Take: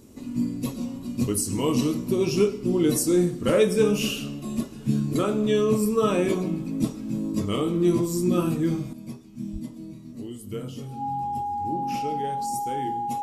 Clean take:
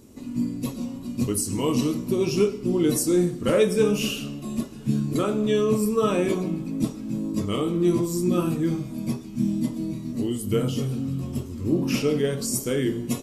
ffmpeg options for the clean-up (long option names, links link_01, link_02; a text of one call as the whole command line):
ffmpeg -i in.wav -filter_complex "[0:a]bandreject=frequency=820:width=30,asplit=3[link_01][link_02][link_03];[link_01]afade=type=out:start_time=9.52:duration=0.02[link_04];[link_02]highpass=frequency=140:width=0.5412,highpass=frequency=140:width=1.3066,afade=type=in:start_time=9.52:duration=0.02,afade=type=out:start_time=9.64:duration=0.02[link_05];[link_03]afade=type=in:start_time=9.64:duration=0.02[link_06];[link_04][link_05][link_06]amix=inputs=3:normalize=0,asetnsamples=nb_out_samples=441:pad=0,asendcmd='8.93 volume volume 10dB',volume=0dB" out.wav